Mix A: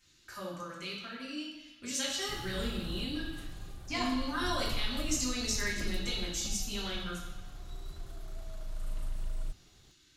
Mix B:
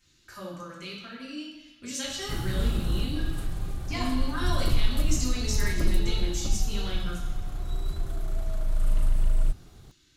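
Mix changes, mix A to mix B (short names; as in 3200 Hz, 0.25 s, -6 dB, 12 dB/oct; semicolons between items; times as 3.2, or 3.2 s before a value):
background +9.0 dB; master: add low shelf 350 Hz +4.5 dB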